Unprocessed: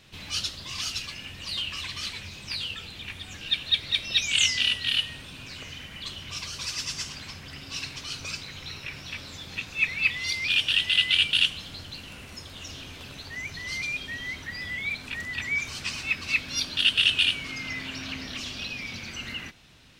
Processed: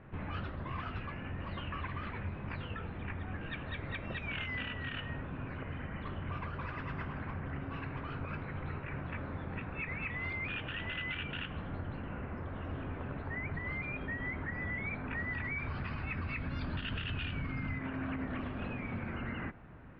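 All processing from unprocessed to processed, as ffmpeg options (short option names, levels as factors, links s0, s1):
-filter_complex "[0:a]asettb=1/sr,asplit=3[s0][s1][s2];[s0]atrim=end=15.154[s3];[s1]atrim=start=15.15:end=17.79,asetpts=PTS-STARTPTS,afade=t=in:d=0.004:c=qsin,afade=t=out:st=2.636:d=0.004:c=qsin,lowpass=f=4800:t=q:w=6.8,asubboost=boost=4.5:cutoff=200[s4];[s2]atrim=start=17.786[s5];[s3][s4]acrossfade=d=0.004:c1=hsin:c2=qsin[s6];[s6][s5]acrossfade=d=0.004:c1=qsin:c2=hsin,lowpass=f=1700:w=0.5412,lowpass=f=1700:w=1.3066,aemphasis=mode=reproduction:type=75fm,alimiter=level_in=2.99:limit=0.0631:level=0:latency=1:release=90,volume=0.335,volume=1.68"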